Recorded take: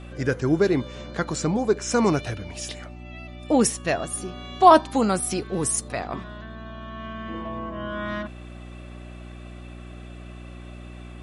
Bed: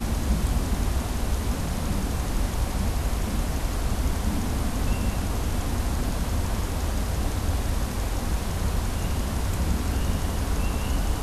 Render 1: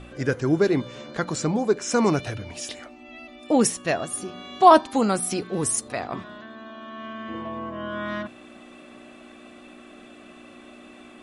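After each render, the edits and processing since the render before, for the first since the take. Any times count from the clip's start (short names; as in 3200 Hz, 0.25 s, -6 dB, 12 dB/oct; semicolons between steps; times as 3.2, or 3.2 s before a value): de-hum 60 Hz, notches 3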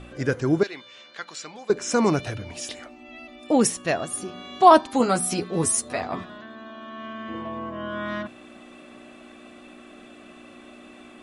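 0.63–1.7 band-pass 3100 Hz, Q 1; 4.99–6.3 doubler 12 ms -3 dB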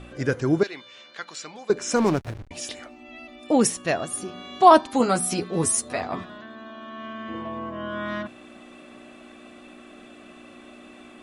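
1.96–2.51 backlash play -24.5 dBFS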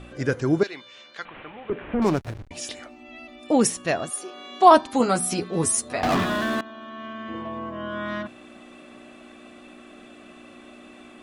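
1.25–2.02 delta modulation 16 kbps, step -38 dBFS; 4.09–4.75 HPF 450 Hz -> 190 Hz 24 dB/oct; 6.03–6.61 sample leveller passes 5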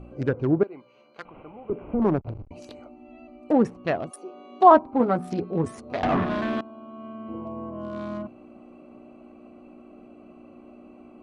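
Wiener smoothing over 25 samples; treble ducked by the level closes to 1500 Hz, closed at -19 dBFS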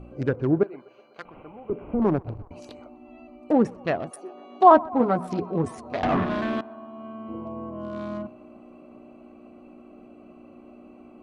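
narrowing echo 0.125 s, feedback 84%, band-pass 920 Hz, level -22 dB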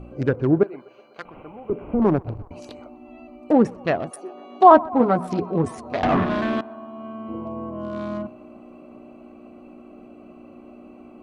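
gain +3.5 dB; limiter -1 dBFS, peak gain reduction 1.5 dB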